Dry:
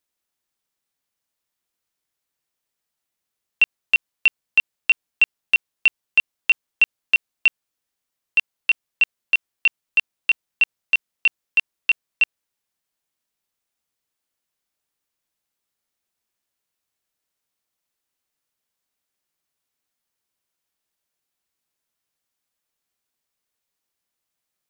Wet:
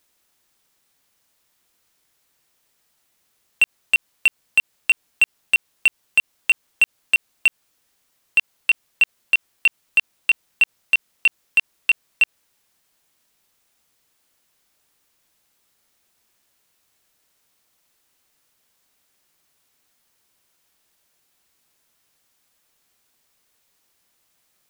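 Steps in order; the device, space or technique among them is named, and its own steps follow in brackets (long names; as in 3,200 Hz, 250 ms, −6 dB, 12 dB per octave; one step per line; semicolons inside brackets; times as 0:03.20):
loud club master (downward compressor 2 to 1, threshold −17 dBFS, peak gain reduction 3.5 dB; hard clipping −13 dBFS, distortion −18 dB; boost into a limiter +23 dB)
level −8.5 dB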